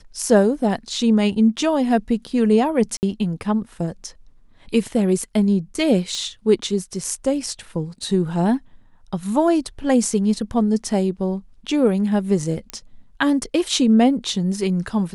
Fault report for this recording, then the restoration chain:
0:02.97–0:03.03: drop-out 59 ms
0:06.15: click −17 dBFS
0:12.70: click −13 dBFS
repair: click removal
repair the gap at 0:02.97, 59 ms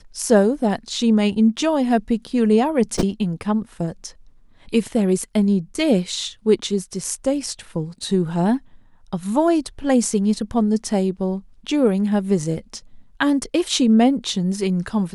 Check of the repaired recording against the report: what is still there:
none of them is left

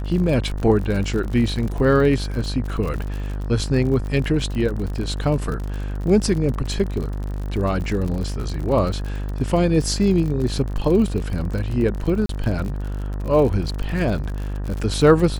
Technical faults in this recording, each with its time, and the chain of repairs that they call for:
mains buzz 50 Hz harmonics 38 −26 dBFS
surface crackle 53 per second −27 dBFS
0:12.26–0:12.29: drop-out 33 ms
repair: click removal
hum removal 50 Hz, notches 38
repair the gap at 0:12.26, 33 ms

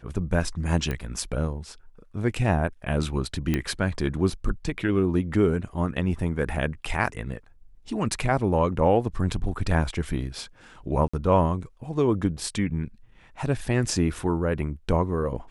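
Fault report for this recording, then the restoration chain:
0:00.91: click −16 dBFS
0:03.54: click −11 dBFS
0:11.08–0:11.13: drop-out 55 ms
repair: click removal
repair the gap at 0:11.08, 55 ms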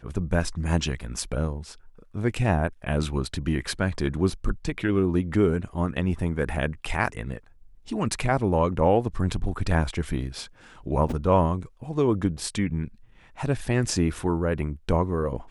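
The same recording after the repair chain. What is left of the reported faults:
none of them is left

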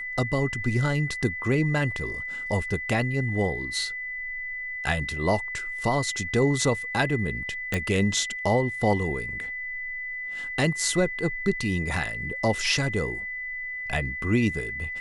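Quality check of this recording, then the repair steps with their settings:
whistle 2,000 Hz −31 dBFS
0:07.74: click −11 dBFS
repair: click removal
notch filter 2,000 Hz, Q 30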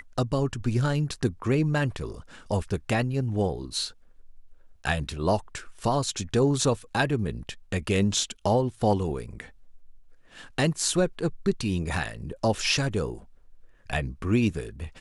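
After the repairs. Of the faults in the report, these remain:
none of them is left

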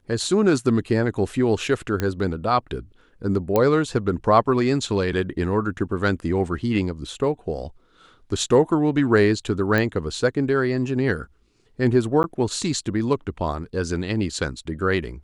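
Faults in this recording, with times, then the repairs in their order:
0:02.00: click −10 dBFS
0:03.56: click −7 dBFS
0:09.78: click −10 dBFS
0:12.23–0:12.24: drop-out 9.9 ms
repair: click removal
repair the gap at 0:12.23, 9.9 ms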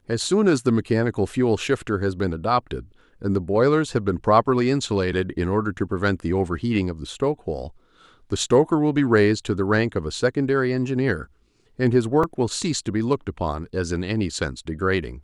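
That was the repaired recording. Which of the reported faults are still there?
0:02.00: click

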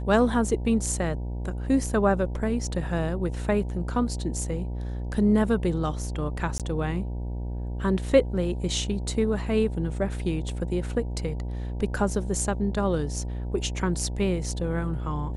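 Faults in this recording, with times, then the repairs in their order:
mains buzz 60 Hz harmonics 16 −31 dBFS
0:06.58–0:06.60: drop-out 17 ms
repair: hum removal 60 Hz, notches 16
repair the gap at 0:06.58, 17 ms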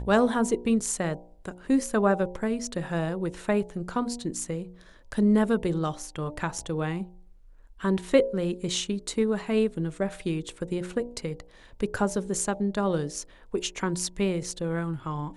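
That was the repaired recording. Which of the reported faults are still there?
none of them is left

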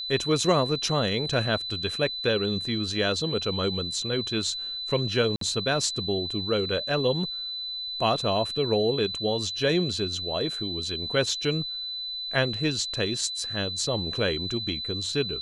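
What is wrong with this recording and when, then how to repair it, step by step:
whistle 4,000 Hz −31 dBFS
0:05.36–0:05.41: drop-out 53 ms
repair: notch filter 4,000 Hz, Q 30
repair the gap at 0:05.36, 53 ms

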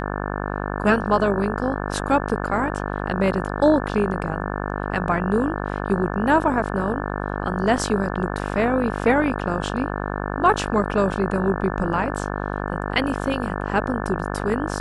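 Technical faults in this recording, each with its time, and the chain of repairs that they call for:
mains buzz 50 Hz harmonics 35 −27 dBFS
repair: hum removal 50 Hz, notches 35

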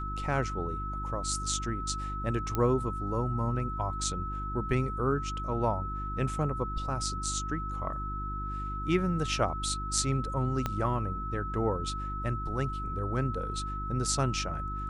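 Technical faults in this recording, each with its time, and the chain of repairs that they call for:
mains hum 50 Hz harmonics 7 −37 dBFS
whistle 1,300 Hz −36 dBFS
0:02.55: click −16 dBFS
0:10.66: click −16 dBFS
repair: click removal
hum removal 50 Hz, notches 7
notch filter 1,300 Hz, Q 30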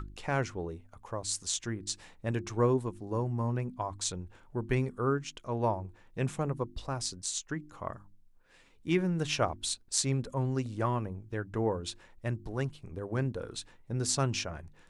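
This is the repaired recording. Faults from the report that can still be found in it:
0:10.66: click

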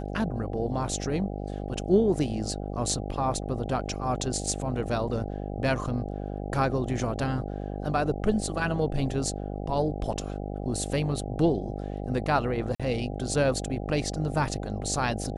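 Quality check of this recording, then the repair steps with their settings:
mains buzz 50 Hz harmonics 16 −34 dBFS
0:12.75–0:12.80: drop-out 46 ms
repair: hum removal 50 Hz, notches 16
repair the gap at 0:12.75, 46 ms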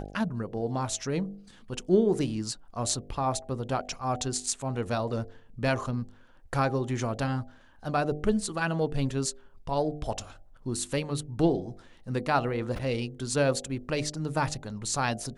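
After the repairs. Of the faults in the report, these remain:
none of them is left

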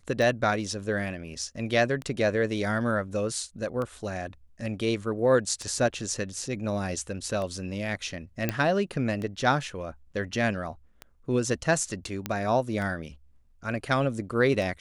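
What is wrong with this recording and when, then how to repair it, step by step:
scratch tick 33 1/3 rpm
0:08.49: click −11 dBFS
0:12.26: click −14 dBFS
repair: click removal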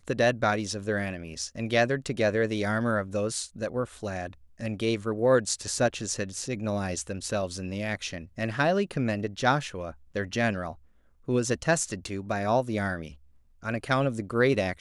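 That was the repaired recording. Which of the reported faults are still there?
none of them is left

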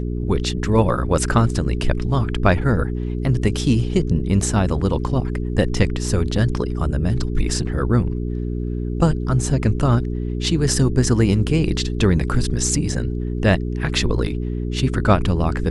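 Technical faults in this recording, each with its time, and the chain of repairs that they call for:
mains hum 60 Hz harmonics 7 −24 dBFS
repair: hum removal 60 Hz, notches 7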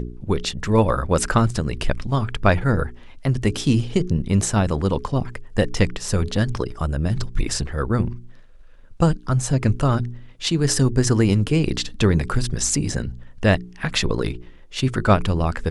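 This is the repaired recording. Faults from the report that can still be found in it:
none of them is left

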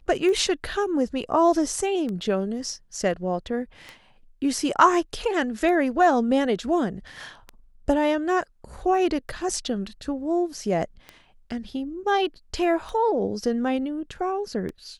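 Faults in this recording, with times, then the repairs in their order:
scratch tick 33 1/3 rpm −21 dBFS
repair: click removal

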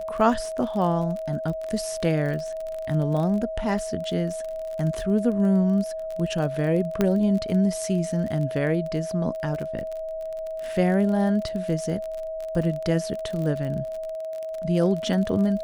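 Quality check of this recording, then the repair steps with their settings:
surface crackle 32 per second −30 dBFS
whistle 640 Hz −29 dBFS
0:07.01: click −9 dBFS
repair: click removal
notch filter 640 Hz, Q 30

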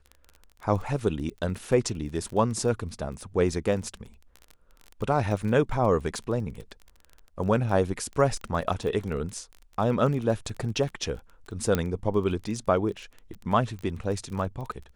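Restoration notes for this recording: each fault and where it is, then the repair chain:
surface crackle 20 per second −33 dBFS
0:11.75: click −11 dBFS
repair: click removal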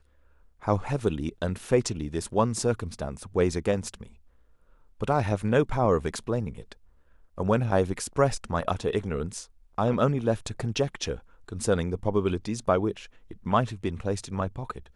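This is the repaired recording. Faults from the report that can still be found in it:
0:11.75: click

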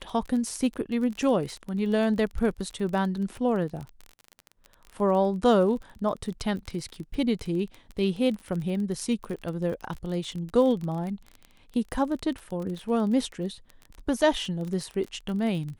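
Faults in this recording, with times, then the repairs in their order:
surface crackle 26 per second −32 dBFS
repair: click removal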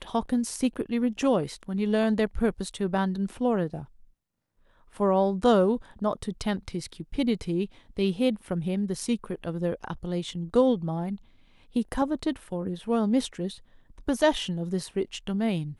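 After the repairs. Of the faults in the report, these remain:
none of them is left

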